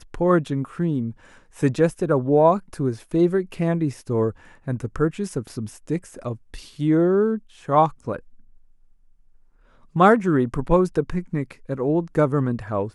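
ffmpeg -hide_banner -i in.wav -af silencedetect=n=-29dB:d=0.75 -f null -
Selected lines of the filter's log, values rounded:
silence_start: 8.17
silence_end: 9.96 | silence_duration: 1.79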